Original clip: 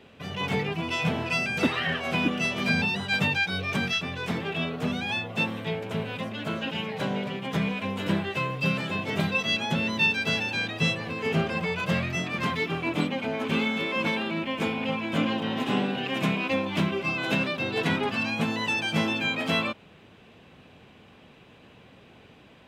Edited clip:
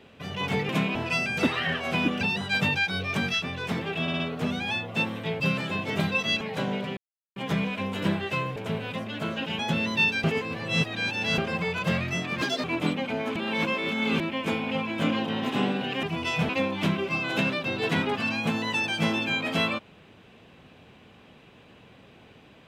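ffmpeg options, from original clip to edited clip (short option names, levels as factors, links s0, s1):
-filter_complex "[0:a]asplit=20[s0][s1][s2][s3][s4][s5][s6][s7][s8][s9][s10][s11][s12][s13][s14][s15][s16][s17][s18][s19];[s0]atrim=end=0.692[s20];[s1]atrim=start=16.168:end=16.432[s21];[s2]atrim=start=1.148:end=2.412[s22];[s3]atrim=start=2.798:end=4.672[s23];[s4]atrim=start=4.608:end=4.672[s24];[s5]atrim=start=4.608:end=4.672[s25];[s6]atrim=start=4.608:end=5.812[s26];[s7]atrim=start=8.598:end=9.612[s27];[s8]atrim=start=6.838:end=7.4,asetpts=PTS-STARTPTS,afade=t=out:st=0.558:d=0.004:c=hsin,apad=pad_dur=0.39[s28];[s9]atrim=start=7.4:end=8.602,asetpts=PTS-STARTPTS,afade=t=in:d=0.004:c=hsin[s29];[s10]atrim=start=5.808:end=6.842[s30];[s11]atrim=start=9.608:end=10.262[s31];[s12]atrim=start=10.258:end=11.402,asetpts=PTS-STARTPTS,areverse[s32];[s13]atrim=start=11.398:end=12.444[s33];[s14]atrim=start=12.44:end=12.78,asetpts=PTS-STARTPTS,asetrate=67914,aresample=44100,atrim=end_sample=9736,asetpts=PTS-STARTPTS[s34];[s15]atrim=start=12.776:end=13.502[s35];[s16]atrim=start=13.498:end=14.342,asetpts=PTS-STARTPTS,areverse[s36];[s17]atrim=start=14.338:end=16.172[s37];[s18]atrim=start=0.688:end=1.152[s38];[s19]atrim=start=16.428[s39];[s20][s21]acrossfade=d=0.004:c1=hsin:c2=hsin[s40];[s40][s22]acrossfade=d=0.004:c1=hsin:c2=hsin[s41];[s41][s23]acrossfade=d=0.004:c1=hsin:c2=hsin[s42];[s42][s24]acrossfade=d=0.004:c1=hsin:c2=hsin[s43];[s43][s25]acrossfade=d=0.004:c1=hsin:c2=hsin[s44];[s44][s26]acrossfade=d=0.004:c1=hsin:c2=hsin[s45];[s45][s27]acrossfade=d=0.004:c1=hsin:c2=hsin[s46];[s28][s29]concat=n=2:v=0:a=1[s47];[s46][s47]acrossfade=d=0.004:c1=hsin:c2=hsin[s48];[s48][s30]acrossfade=d=0.004:c1=hsin:c2=hsin[s49];[s49][s31]acrossfade=d=0.004:c1=hsin:c2=hsin[s50];[s50][s32]acrossfade=d=0.004:c1=hsin:c2=hsin[s51];[s51][s33]acrossfade=d=0.004:c1=hsin:c2=hsin[s52];[s52][s34]acrossfade=d=0.004:c1=hsin:c2=hsin[s53];[s53][s35]acrossfade=d=0.004:c1=hsin:c2=hsin[s54];[s54][s36]acrossfade=d=0.004:c1=hsin:c2=hsin[s55];[s55][s37]acrossfade=d=0.004:c1=hsin:c2=hsin[s56];[s56][s38]acrossfade=d=0.004:c1=hsin:c2=hsin[s57];[s57][s39]acrossfade=d=0.004:c1=hsin:c2=hsin"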